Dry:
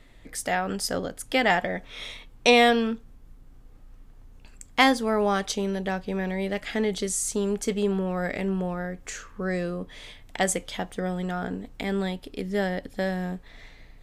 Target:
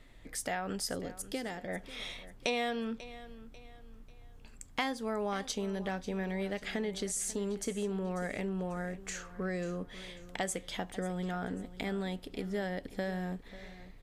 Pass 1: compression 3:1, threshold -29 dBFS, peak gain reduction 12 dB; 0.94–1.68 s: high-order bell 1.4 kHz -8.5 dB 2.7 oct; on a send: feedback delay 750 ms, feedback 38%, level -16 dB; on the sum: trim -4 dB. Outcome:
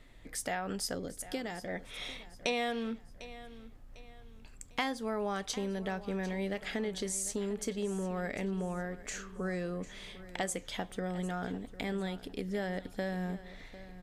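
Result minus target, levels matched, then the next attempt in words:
echo 208 ms late
compression 3:1, threshold -29 dBFS, peak gain reduction 12 dB; 0.94–1.68 s: high-order bell 1.4 kHz -8.5 dB 2.7 oct; on a send: feedback delay 542 ms, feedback 38%, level -16 dB; on the sum: trim -4 dB

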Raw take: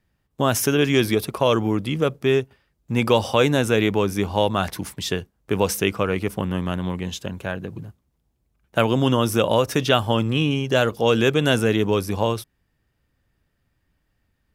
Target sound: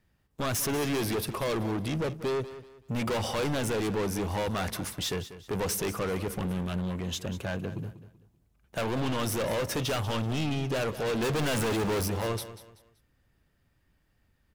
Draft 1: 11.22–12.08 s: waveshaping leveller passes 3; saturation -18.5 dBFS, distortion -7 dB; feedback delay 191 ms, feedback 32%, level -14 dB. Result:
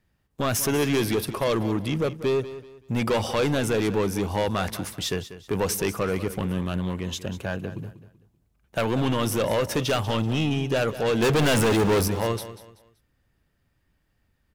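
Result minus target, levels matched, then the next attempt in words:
saturation: distortion -4 dB
11.22–12.08 s: waveshaping leveller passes 3; saturation -27 dBFS, distortion -2 dB; feedback delay 191 ms, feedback 32%, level -14 dB

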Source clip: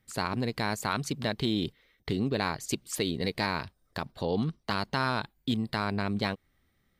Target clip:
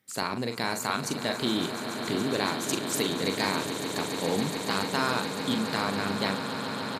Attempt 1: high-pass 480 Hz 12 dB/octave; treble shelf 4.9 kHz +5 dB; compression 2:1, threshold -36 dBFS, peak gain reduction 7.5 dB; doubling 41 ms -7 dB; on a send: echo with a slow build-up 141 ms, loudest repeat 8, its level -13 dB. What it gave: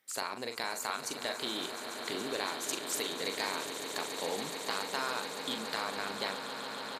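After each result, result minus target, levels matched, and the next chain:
125 Hz band -12.0 dB; compression: peak gain reduction +7.5 dB
high-pass 170 Hz 12 dB/octave; treble shelf 4.9 kHz +5 dB; compression 2:1, threshold -36 dBFS, peak gain reduction 7.5 dB; doubling 41 ms -7 dB; on a send: echo with a slow build-up 141 ms, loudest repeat 8, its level -13 dB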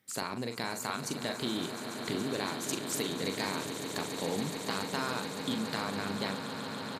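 compression: peak gain reduction +7.5 dB
high-pass 170 Hz 12 dB/octave; treble shelf 4.9 kHz +5 dB; doubling 41 ms -7 dB; on a send: echo with a slow build-up 141 ms, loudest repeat 8, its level -13 dB

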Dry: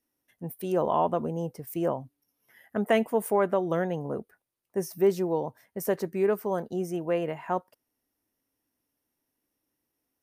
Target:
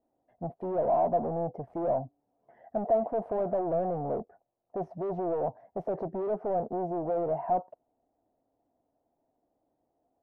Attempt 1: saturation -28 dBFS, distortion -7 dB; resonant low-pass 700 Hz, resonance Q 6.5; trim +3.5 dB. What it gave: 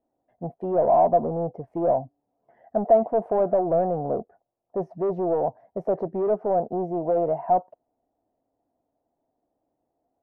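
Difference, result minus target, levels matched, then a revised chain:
saturation: distortion -4 dB
saturation -37 dBFS, distortion -3 dB; resonant low-pass 700 Hz, resonance Q 6.5; trim +3.5 dB

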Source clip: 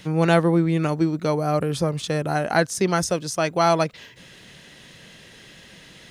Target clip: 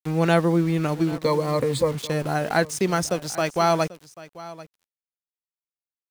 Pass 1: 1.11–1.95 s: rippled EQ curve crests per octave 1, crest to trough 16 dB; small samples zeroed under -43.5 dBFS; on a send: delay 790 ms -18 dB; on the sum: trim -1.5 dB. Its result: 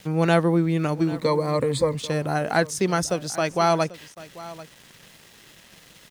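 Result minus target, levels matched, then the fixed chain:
small samples zeroed: distortion -9 dB
1.11–1.95 s: rippled EQ curve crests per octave 1, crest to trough 16 dB; small samples zeroed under -33 dBFS; on a send: delay 790 ms -18 dB; on the sum: trim -1.5 dB

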